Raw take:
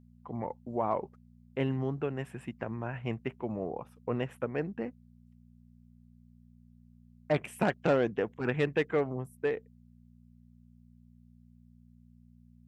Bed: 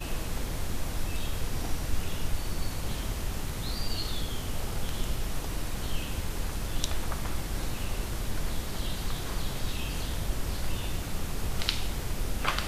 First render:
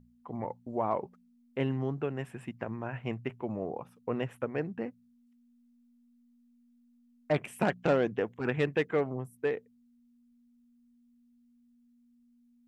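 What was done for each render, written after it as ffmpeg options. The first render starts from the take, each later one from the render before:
ffmpeg -i in.wav -af "bandreject=frequency=60:width_type=h:width=4,bandreject=frequency=120:width_type=h:width=4,bandreject=frequency=180:width_type=h:width=4" out.wav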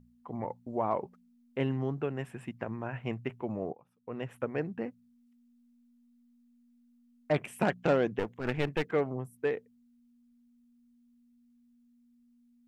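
ffmpeg -i in.wav -filter_complex "[0:a]asettb=1/sr,asplit=3[link_01][link_02][link_03];[link_01]atrim=end=8.194[link_04];[link_02]atrim=start=8.19:end=8.92,asetpts=PTS-STARTPTS,afade=type=in:duration=0.004:curve=qsin,afade=type=out:start_time=0.726:duration=0.004:curve=qsin,aeval=exprs='clip(val(0),-1,0.0133)':channel_layout=same[link_05];[link_03]atrim=start=8.916[link_06];[link_04][link_05]acrossfade=duration=0.004:curve1=hsin:curve2=qsin[link_07];[link_07][link_06]acrossfade=duration=0.004:curve1=qsin:curve2=hsin,asplit=2[link_08][link_09];[link_08]atrim=end=3.73,asetpts=PTS-STARTPTS,afade=type=out:start_time=3.726:duration=0.004:curve=hsin:silence=0.105925[link_10];[link_09]atrim=start=3.73,asetpts=PTS-STARTPTS,afade=type=in:duration=0.65:curve=qua:silence=0.105925[link_11];[link_10][link_11]concat=n=2:v=0:a=1" out.wav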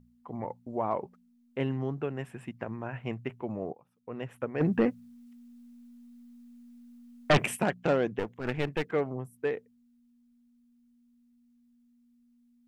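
ffmpeg -i in.wav -filter_complex "[0:a]asplit=3[link_01][link_02][link_03];[link_01]afade=type=out:start_time=4.6:duration=0.02[link_04];[link_02]aeval=exprs='0.158*sin(PI/2*2.82*val(0)/0.158)':channel_layout=same,afade=type=in:start_time=4.6:duration=0.02,afade=type=out:start_time=7.55:duration=0.02[link_05];[link_03]afade=type=in:start_time=7.55:duration=0.02[link_06];[link_04][link_05][link_06]amix=inputs=3:normalize=0" out.wav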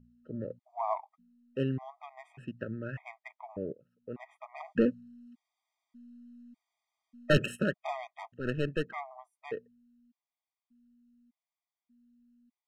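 ffmpeg -i in.wav -af "adynamicsmooth=sensitivity=7.5:basefreq=4700,afftfilt=real='re*gt(sin(2*PI*0.84*pts/sr)*(1-2*mod(floor(b*sr/1024/630),2)),0)':imag='im*gt(sin(2*PI*0.84*pts/sr)*(1-2*mod(floor(b*sr/1024/630),2)),0)':win_size=1024:overlap=0.75" out.wav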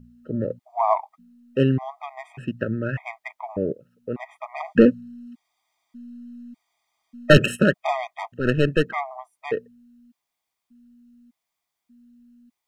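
ffmpeg -i in.wav -af "volume=12dB,alimiter=limit=-2dB:level=0:latency=1" out.wav

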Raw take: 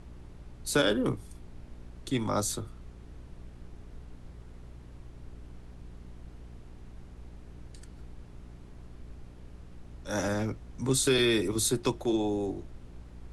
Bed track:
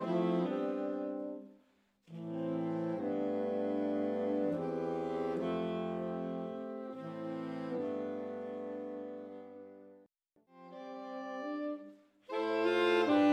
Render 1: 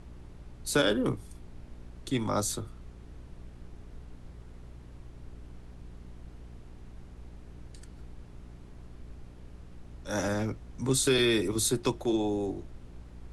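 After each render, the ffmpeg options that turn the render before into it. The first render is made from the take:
ffmpeg -i in.wav -af anull out.wav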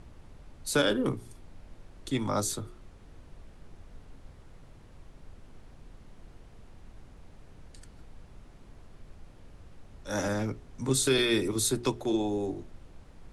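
ffmpeg -i in.wav -af "bandreject=frequency=60:width_type=h:width=4,bandreject=frequency=120:width_type=h:width=4,bandreject=frequency=180:width_type=h:width=4,bandreject=frequency=240:width_type=h:width=4,bandreject=frequency=300:width_type=h:width=4,bandreject=frequency=360:width_type=h:width=4,bandreject=frequency=420:width_type=h:width=4" out.wav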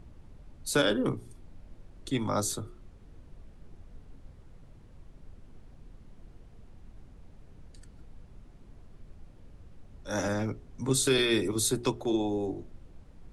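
ffmpeg -i in.wav -af "afftdn=noise_reduction=6:noise_floor=-53" out.wav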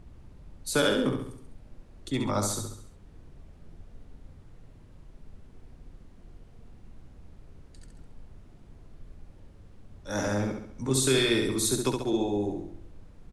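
ffmpeg -i in.wav -af "aecho=1:1:68|136|204|272|340|408:0.562|0.27|0.13|0.0622|0.0299|0.0143" out.wav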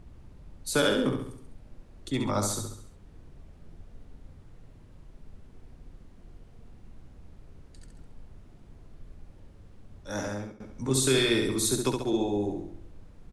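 ffmpeg -i in.wav -filter_complex "[0:a]asplit=2[link_01][link_02];[link_01]atrim=end=10.6,asetpts=PTS-STARTPTS,afade=type=out:start_time=9.99:duration=0.61:silence=0.112202[link_03];[link_02]atrim=start=10.6,asetpts=PTS-STARTPTS,afade=type=in:duration=0.004:curve=hsin:silence=0.112202[link_04];[link_03][link_04]concat=n=2:v=0:a=1" out.wav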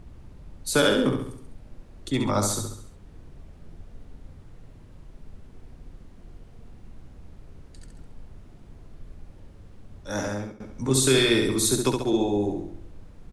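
ffmpeg -i in.wav -af "volume=4dB" out.wav

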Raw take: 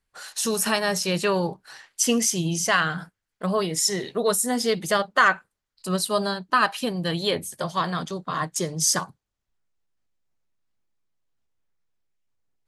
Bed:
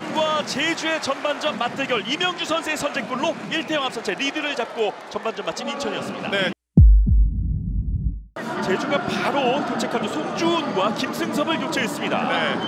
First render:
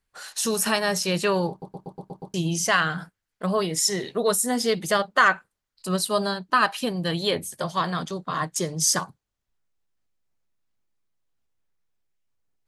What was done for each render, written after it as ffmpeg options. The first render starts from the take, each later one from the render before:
ffmpeg -i in.wav -filter_complex "[0:a]asplit=8[link_01][link_02][link_03][link_04][link_05][link_06][link_07][link_08];[link_01]atrim=end=1.622[link_09];[link_02]atrim=start=1.498:end=1.622[link_10];[link_03]atrim=start=1.498:end=1.622[link_11];[link_04]atrim=start=1.498:end=1.622[link_12];[link_05]atrim=start=1.498:end=1.622[link_13];[link_06]atrim=start=1.498:end=1.622[link_14];[link_07]atrim=start=1.498:end=1.622[link_15];[link_08]atrim=start=2.338[link_16];[link_09][link_10]acrossfade=duration=0.004:curve1=hsin:curve2=hsin[link_17];[link_17][link_11]acrossfade=duration=0.004:curve1=hsin:curve2=hsin[link_18];[link_18][link_12]acrossfade=duration=0.004:curve1=hsin:curve2=hsin[link_19];[link_19][link_13]acrossfade=duration=0.004:curve1=hsin:curve2=hsin[link_20];[link_20][link_14]acrossfade=duration=0.004:curve1=hsin:curve2=hsin[link_21];[link_21][link_15]acrossfade=duration=0.004:curve1=hsin:curve2=hsin[link_22];[link_22][link_16]acrossfade=duration=0.004:curve1=hsin:curve2=hsin" out.wav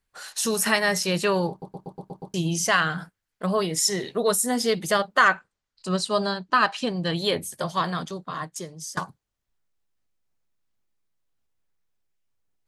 ffmpeg -i in.wav -filter_complex "[0:a]asettb=1/sr,asplit=3[link_01][link_02][link_03];[link_01]atrim=end=0.634[link_04];[link_02]atrim=start=0.63:end=1.03,asetpts=PTS-STARTPTS,afade=type=in:duration=0.004:curve=qsin,afade=type=out:start_time=0.396:duration=0.004:curve=qsin,equalizer=frequency=2000:width_type=o:width=0.2:gain=12[link_05];[link_03]atrim=start=1.026[link_06];[link_04][link_05]acrossfade=duration=0.004:curve1=hsin:curve2=qsin[link_07];[link_07][link_06]acrossfade=duration=0.004:curve1=qsin:curve2=hsin,asettb=1/sr,asplit=3[link_08][link_09][link_10];[link_08]atrim=end=5.344[link_11];[link_09]atrim=start=5.34:end=7.16,asetpts=PTS-STARTPTS,afade=type=in:duration=0.004:curve=qsin,afade=type=out:start_time=1.816:duration=0.004:curve=qsin,lowpass=frequency=7700:width=0.5412,lowpass=frequency=7700:width=1.3066[link_12];[link_10]atrim=start=7.156[link_13];[link_11][link_12]acrossfade=duration=0.004:curve1=hsin:curve2=qsin[link_14];[link_14][link_13]acrossfade=duration=0.004:curve1=qsin:curve2=hsin,asplit=2[link_15][link_16];[link_15]atrim=end=8.97,asetpts=PTS-STARTPTS,afade=type=out:start_time=7.82:duration=1.15:silence=0.0944061[link_17];[link_16]atrim=start=8.97,asetpts=PTS-STARTPTS,afade=type=in:duration=0.004:curve=hsin:silence=0.0944061[link_18];[link_17][link_18]concat=n=2:v=0:a=1" out.wav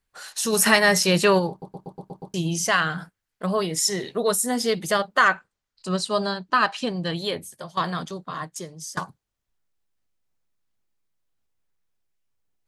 ffmpeg -i in.wav -filter_complex "[0:a]asplit=3[link_01][link_02][link_03];[link_01]afade=type=out:start_time=0.52:duration=0.02[link_04];[link_02]acontrast=31,afade=type=in:start_time=0.52:duration=0.02,afade=type=out:start_time=1.38:duration=0.02[link_05];[link_03]afade=type=in:start_time=1.38:duration=0.02[link_06];[link_04][link_05][link_06]amix=inputs=3:normalize=0,asplit=2[link_07][link_08];[link_07]atrim=end=7.77,asetpts=PTS-STARTPTS,afade=type=out:start_time=6.95:duration=0.82:silence=0.251189[link_09];[link_08]atrim=start=7.77,asetpts=PTS-STARTPTS,afade=type=in:duration=0.004:curve=hsin:silence=0.251189[link_10];[link_09][link_10]concat=n=2:v=0:a=1" out.wav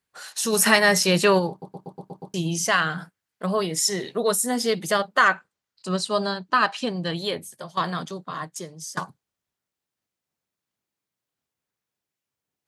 ffmpeg -i in.wav -af "highpass=110" out.wav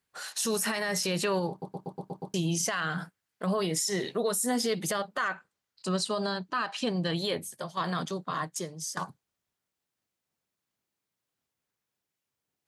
ffmpeg -i in.wav -af "acompressor=threshold=-23dB:ratio=6,alimiter=limit=-20dB:level=0:latency=1:release=29" out.wav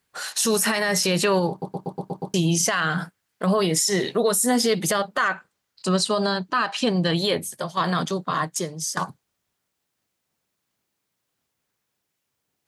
ffmpeg -i in.wav -af "volume=8dB" out.wav

